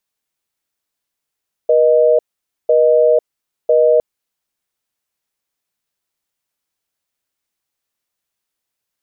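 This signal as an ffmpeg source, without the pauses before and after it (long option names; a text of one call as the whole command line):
ffmpeg -f lavfi -i "aevalsrc='0.282*(sin(2*PI*480*t)+sin(2*PI*620*t))*clip(min(mod(t,1),0.5-mod(t,1))/0.005,0,1)':duration=2.31:sample_rate=44100" out.wav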